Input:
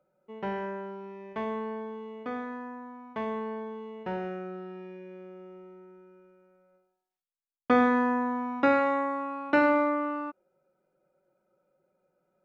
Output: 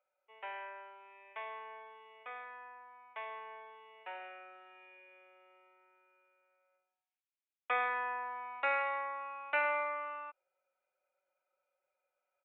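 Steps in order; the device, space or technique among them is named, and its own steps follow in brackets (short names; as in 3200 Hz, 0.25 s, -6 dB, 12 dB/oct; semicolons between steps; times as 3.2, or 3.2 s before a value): musical greeting card (downsampling 8000 Hz; HPF 630 Hz 24 dB/oct; bell 2400 Hz +11 dB 0.53 oct); gain -8 dB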